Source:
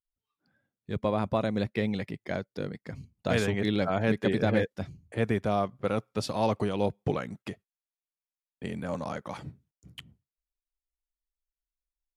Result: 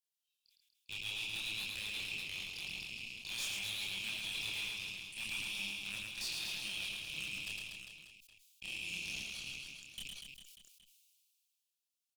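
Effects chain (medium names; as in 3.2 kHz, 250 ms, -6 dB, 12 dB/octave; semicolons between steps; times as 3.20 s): rattle on loud lows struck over -40 dBFS, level -34 dBFS; steep high-pass 2.5 kHz 72 dB/octave; peak limiter -35 dBFS, peak gain reduction 11.5 dB; Chebyshev shaper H 5 -7 dB, 6 -18 dB, 7 -12 dB, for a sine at -34.5 dBFS; chorus voices 4, 0.64 Hz, delay 28 ms, depth 3.3 ms; on a send: reverse bouncing-ball echo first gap 110 ms, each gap 1.2×, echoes 5; on the sum: decay stretcher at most 27 dB/s; trim +4.5 dB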